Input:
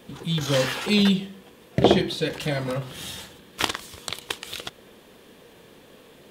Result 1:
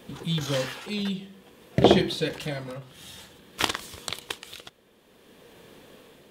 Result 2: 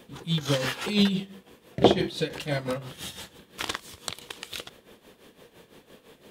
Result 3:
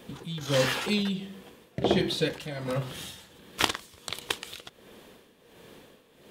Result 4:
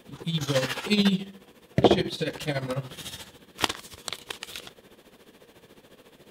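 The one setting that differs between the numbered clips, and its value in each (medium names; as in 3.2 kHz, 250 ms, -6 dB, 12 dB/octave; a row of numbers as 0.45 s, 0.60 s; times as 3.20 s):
tremolo, rate: 0.52 Hz, 5.9 Hz, 1.4 Hz, 14 Hz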